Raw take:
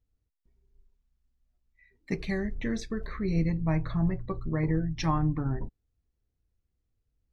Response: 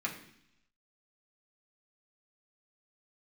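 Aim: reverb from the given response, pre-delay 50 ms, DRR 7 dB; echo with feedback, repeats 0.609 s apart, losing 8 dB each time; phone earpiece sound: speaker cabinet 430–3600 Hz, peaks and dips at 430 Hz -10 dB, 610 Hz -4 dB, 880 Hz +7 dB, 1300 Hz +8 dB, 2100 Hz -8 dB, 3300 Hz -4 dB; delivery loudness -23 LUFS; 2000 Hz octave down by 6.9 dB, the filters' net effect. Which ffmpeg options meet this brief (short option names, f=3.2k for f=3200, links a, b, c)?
-filter_complex "[0:a]equalizer=f=2k:t=o:g=-5.5,aecho=1:1:609|1218|1827|2436|3045:0.398|0.159|0.0637|0.0255|0.0102,asplit=2[a][b];[1:a]atrim=start_sample=2205,adelay=50[c];[b][c]afir=irnorm=-1:irlink=0,volume=-11dB[d];[a][d]amix=inputs=2:normalize=0,highpass=430,equalizer=f=430:t=q:w=4:g=-10,equalizer=f=610:t=q:w=4:g=-4,equalizer=f=880:t=q:w=4:g=7,equalizer=f=1.3k:t=q:w=4:g=8,equalizer=f=2.1k:t=q:w=4:g=-8,equalizer=f=3.3k:t=q:w=4:g=-4,lowpass=f=3.6k:w=0.5412,lowpass=f=3.6k:w=1.3066,volume=15dB"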